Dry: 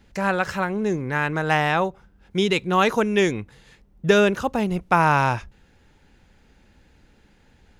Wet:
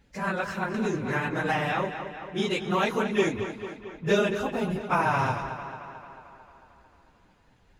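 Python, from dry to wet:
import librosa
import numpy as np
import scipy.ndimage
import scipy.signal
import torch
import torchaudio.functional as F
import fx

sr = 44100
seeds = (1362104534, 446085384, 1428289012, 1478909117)

y = fx.phase_scramble(x, sr, seeds[0], window_ms=50)
y = fx.echo_tape(y, sr, ms=223, feedback_pct=66, wet_db=-9.0, lp_hz=5400.0, drive_db=3.0, wow_cents=13)
y = fx.band_squash(y, sr, depth_pct=70, at=(0.74, 1.84))
y = F.gain(torch.from_numpy(y), -6.5).numpy()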